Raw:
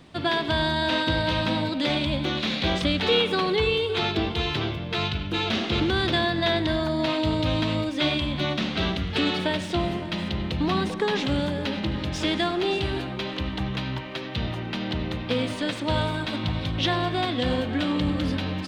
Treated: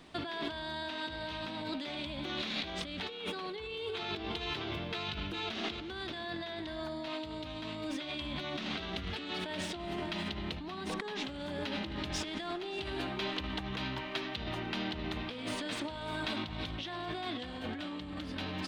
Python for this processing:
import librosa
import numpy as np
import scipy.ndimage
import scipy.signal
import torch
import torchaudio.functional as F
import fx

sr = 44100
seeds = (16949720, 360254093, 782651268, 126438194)

y = fx.over_compress(x, sr, threshold_db=-30.0, ratio=-1.0)
y = fx.peak_eq(y, sr, hz=120.0, db=-9.0, octaves=1.6)
y = fx.notch(y, sr, hz=520.0, q=12.0)
y = F.gain(torch.from_numpy(y), -6.5).numpy()